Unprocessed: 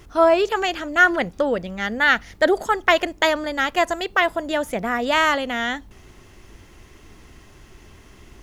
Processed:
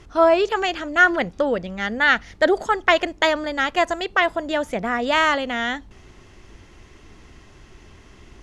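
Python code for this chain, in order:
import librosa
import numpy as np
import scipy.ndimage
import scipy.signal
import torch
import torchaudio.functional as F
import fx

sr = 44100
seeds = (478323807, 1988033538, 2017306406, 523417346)

y = scipy.signal.sosfilt(scipy.signal.butter(2, 7300.0, 'lowpass', fs=sr, output='sos'), x)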